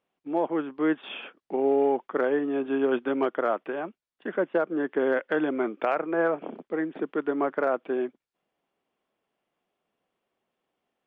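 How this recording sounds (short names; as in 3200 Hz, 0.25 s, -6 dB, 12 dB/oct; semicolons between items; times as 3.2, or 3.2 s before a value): noise floor -88 dBFS; spectral tilt -0.5 dB/oct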